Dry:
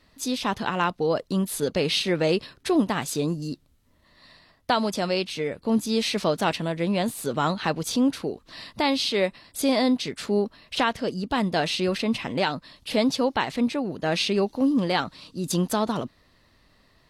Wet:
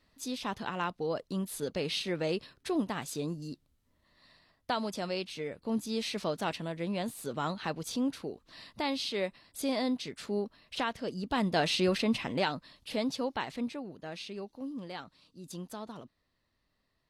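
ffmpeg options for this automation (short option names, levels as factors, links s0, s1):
-af "volume=0.75,afade=t=in:st=11:d=0.81:silence=0.446684,afade=t=out:st=11.81:d=1.17:silence=0.421697,afade=t=out:st=13.48:d=0.66:silence=0.398107"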